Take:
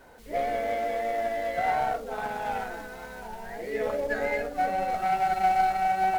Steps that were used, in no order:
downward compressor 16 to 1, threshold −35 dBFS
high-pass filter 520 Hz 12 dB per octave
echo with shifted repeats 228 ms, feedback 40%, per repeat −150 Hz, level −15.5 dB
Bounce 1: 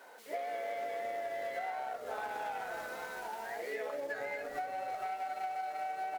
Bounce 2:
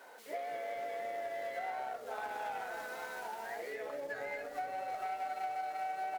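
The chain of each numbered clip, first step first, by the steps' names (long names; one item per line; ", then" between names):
high-pass filter, then echo with shifted repeats, then downward compressor
downward compressor, then high-pass filter, then echo with shifted repeats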